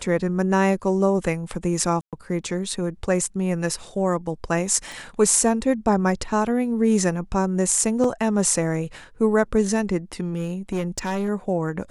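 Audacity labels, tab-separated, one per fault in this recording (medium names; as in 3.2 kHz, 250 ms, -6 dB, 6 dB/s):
2.010000	2.130000	dropout 117 ms
4.920000	4.920000	pop
8.040000	8.040000	dropout 2.8 ms
10.350000	11.290000	clipped -20.5 dBFS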